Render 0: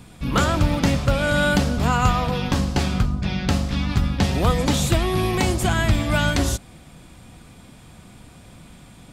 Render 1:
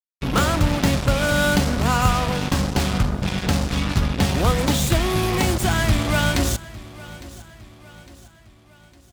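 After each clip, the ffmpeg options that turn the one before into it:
ffmpeg -i in.wav -af "acrusher=bits=3:mix=0:aa=0.5,aecho=1:1:857|1714|2571|3428:0.112|0.0539|0.0259|0.0124" out.wav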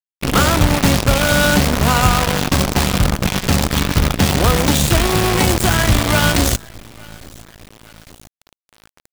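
ffmpeg -i in.wav -af "acrusher=bits=4:dc=4:mix=0:aa=0.000001,volume=3.5dB" out.wav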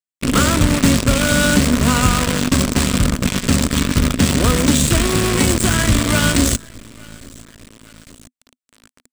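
ffmpeg -i in.wav -af "equalizer=frequency=250:width_type=o:width=0.33:gain=9,equalizer=frequency=800:width_type=o:width=0.33:gain=-11,equalizer=frequency=8000:width_type=o:width=0.33:gain=8,equalizer=frequency=16000:width_type=o:width=0.33:gain=-10,volume=-1.5dB" out.wav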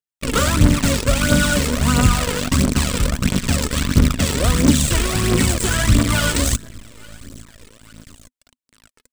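ffmpeg -i in.wav -af "aphaser=in_gain=1:out_gain=1:delay=2.4:decay=0.56:speed=1.5:type=triangular,volume=-4dB" out.wav

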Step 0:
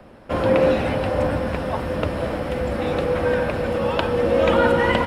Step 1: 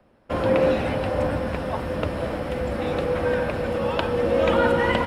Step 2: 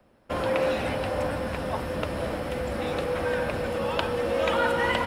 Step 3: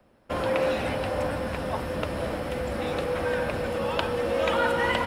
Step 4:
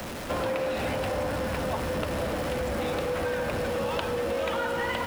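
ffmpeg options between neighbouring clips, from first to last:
ffmpeg -i in.wav -af "agate=range=-11dB:threshold=-36dB:ratio=16:detection=peak,volume=-2.5dB" out.wav
ffmpeg -i in.wav -filter_complex "[0:a]highshelf=frequency=5100:gain=7,acrossover=split=580[link_01][link_02];[link_01]alimiter=limit=-23dB:level=0:latency=1[link_03];[link_03][link_02]amix=inputs=2:normalize=0,volume=-2dB" out.wav
ffmpeg -i in.wav -af anull out.wav
ffmpeg -i in.wav -af "aeval=exprs='val(0)+0.5*0.0299*sgn(val(0))':channel_layout=same,acompressor=threshold=-26dB:ratio=6" out.wav

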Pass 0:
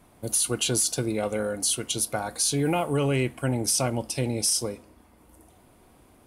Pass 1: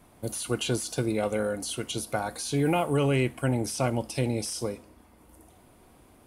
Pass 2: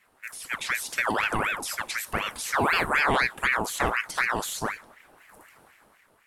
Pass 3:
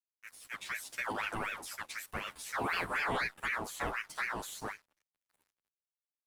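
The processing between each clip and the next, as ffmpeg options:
ffmpeg -i in.wav -filter_complex "[0:a]acrossover=split=2900[link_01][link_02];[link_02]acompressor=threshold=-33dB:ratio=4:attack=1:release=60[link_03];[link_01][link_03]amix=inputs=2:normalize=0" out.wav
ffmpeg -i in.wav -af "dynaudnorm=framelen=190:gausssize=7:maxgain=9dB,aeval=exprs='val(0)*sin(2*PI*1300*n/s+1300*0.6/4*sin(2*PI*4*n/s))':channel_layout=same,volume=-4.5dB" out.wav
ffmpeg -i in.wav -filter_complex "[0:a]aeval=exprs='sgn(val(0))*max(abs(val(0))-0.00562,0)':channel_layout=same,asplit=2[link_01][link_02];[link_02]adelay=10.4,afreqshift=-0.52[link_03];[link_01][link_03]amix=inputs=2:normalize=1,volume=-7dB" out.wav

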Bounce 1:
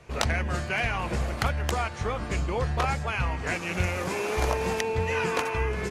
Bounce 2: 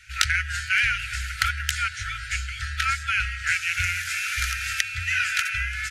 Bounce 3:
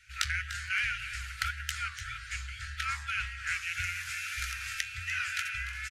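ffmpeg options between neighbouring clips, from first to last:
ffmpeg -i in.wav -af "afftfilt=real='re*(1-between(b*sr/4096,120,1300))':imag='im*(1-between(b*sr/4096,120,1300))':win_size=4096:overlap=0.75,lowshelf=frequency=240:width_type=q:width=3:gain=-10.5,volume=8dB" out.wav
ffmpeg -i in.wav -af "flanger=delay=5.7:depth=9.1:regen=77:speed=1.8:shape=sinusoidal,aecho=1:1:296:0.224,volume=-5dB" out.wav

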